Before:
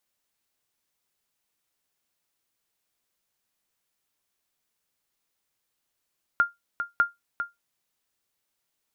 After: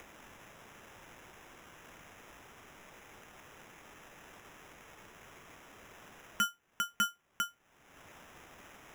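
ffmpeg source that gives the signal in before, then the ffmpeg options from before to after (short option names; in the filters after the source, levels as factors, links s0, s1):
-f lavfi -i "aevalsrc='0.251*(sin(2*PI*1400*mod(t,0.6))*exp(-6.91*mod(t,0.6)/0.17)+0.355*sin(2*PI*1400*max(mod(t,0.6)-0.4,0))*exp(-6.91*max(mod(t,0.6)-0.4,0)/0.17))':d=1.2:s=44100"
-filter_complex "[0:a]acrossover=split=250|1600[s0][s1][s2];[s2]acompressor=mode=upward:threshold=0.02:ratio=2.5[s3];[s0][s1][s3]amix=inputs=3:normalize=0,acrusher=samples=10:mix=1:aa=0.000001,asoftclip=type=tanh:threshold=0.0562"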